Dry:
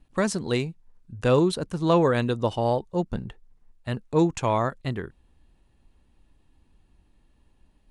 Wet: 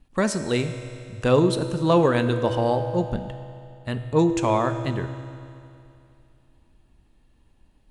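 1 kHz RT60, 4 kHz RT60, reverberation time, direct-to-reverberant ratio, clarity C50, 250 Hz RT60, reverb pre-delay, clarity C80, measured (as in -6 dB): 2.6 s, 2.5 s, 2.6 s, 8.0 dB, 9.5 dB, 2.6 s, 3 ms, 10.0 dB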